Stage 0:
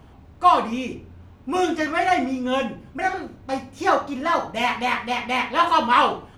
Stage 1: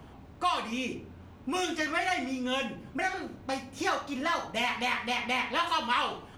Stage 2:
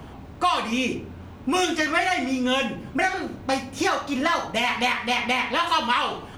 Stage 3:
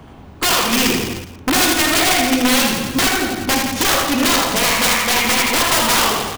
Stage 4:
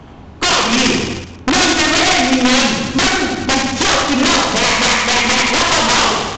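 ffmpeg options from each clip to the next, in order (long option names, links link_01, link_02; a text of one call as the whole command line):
ffmpeg -i in.wav -filter_complex "[0:a]acrossover=split=120|1800[link_01][link_02][link_03];[link_01]acompressor=threshold=-55dB:ratio=4[link_04];[link_02]acompressor=threshold=-32dB:ratio=4[link_05];[link_03]acompressor=threshold=-30dB:ratio=4[link_06];[link_04][link_05][link_06]amix=inputs=3:normalize=0" out.wav
ffmpeg -i in.wav -af "alimiter=limit=-20dB:level=0:latency=1:release=271,volume=9dB" out.wav
ffmpeg -i in.wav -af "aeval=exprs='(mod(7.5*val(0)+1,2)-1)/7.5':channel_layout=same,aecho=1:1:80|168|264.8|371.3|488.4:0.631|0.398|0.251|0.158|0.1,agate=range=-7dB:threshold=-33dB:ratio=16:detection=peak,volume=7dB" out.wav
ffmpeg -i in.wav -af "aresample=16000,aresample=44100,volume=3dB" out.wav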